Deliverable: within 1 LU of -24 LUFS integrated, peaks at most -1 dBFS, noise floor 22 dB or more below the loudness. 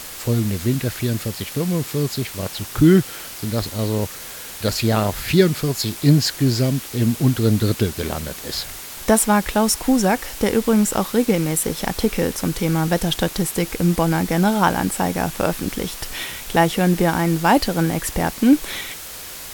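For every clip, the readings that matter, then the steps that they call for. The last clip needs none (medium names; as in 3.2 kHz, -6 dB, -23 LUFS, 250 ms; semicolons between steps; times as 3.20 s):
noise floor -35 dBFS; noise floor target -42 dBFS; loudness -20.0 LUFS; peak level -1.5 dBFS; loudness target -24.0 LUFS
-> noise reduction 7 dB, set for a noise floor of -35 dBFS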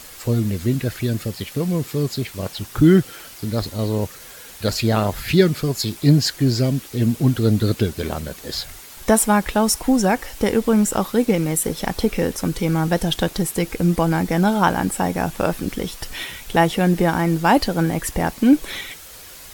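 noise floor -40 dBFS; noise floor target -42 dBFS
-> noise reduction 6 dB, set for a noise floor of -40 dBFS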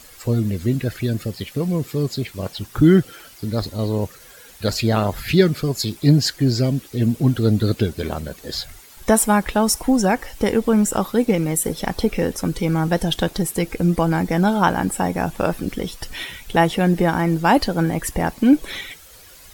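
noise floor -45 dBFS; loudness -20.0 LUFS; peak level -2.0 dBFS; loudness target -24.0 LUFS
-> trim -4 dB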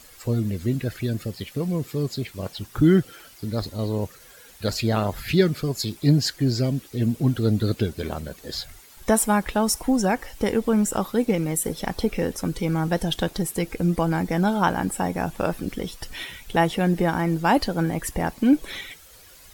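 loudness -24.0 LUFS; peak level -6.0 dBFS; noise floor -49 dBFS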